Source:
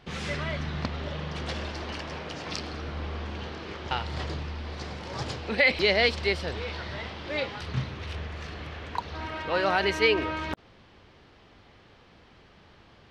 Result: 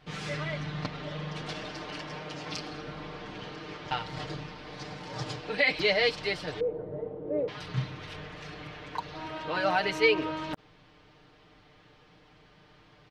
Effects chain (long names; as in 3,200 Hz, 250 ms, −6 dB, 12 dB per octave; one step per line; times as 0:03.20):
0:06.60–0:07.48: low-pass with resonance 470 Hz, resonance Q 4.2
comb filter 6.6 ms, depth 89%
level −5 dB